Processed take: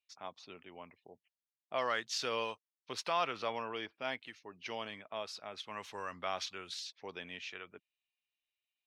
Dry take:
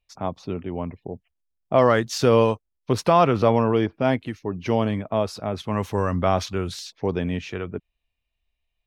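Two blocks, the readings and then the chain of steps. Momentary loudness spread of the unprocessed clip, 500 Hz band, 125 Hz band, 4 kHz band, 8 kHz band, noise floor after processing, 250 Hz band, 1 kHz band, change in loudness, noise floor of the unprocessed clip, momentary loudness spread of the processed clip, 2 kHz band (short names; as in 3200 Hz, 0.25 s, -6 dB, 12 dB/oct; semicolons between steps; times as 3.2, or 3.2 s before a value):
14 LU, -20.0 dB, -32.5 dB, -6.0 dB, -9.5 dB, under -85 dBFS, -26.5 dB, -15.0 dB, -16.5 dB, -79 dBFS, 17 LU, -8.5 dB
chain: band-pass 3400 Hz, Q 0.83; gain -5.5 dB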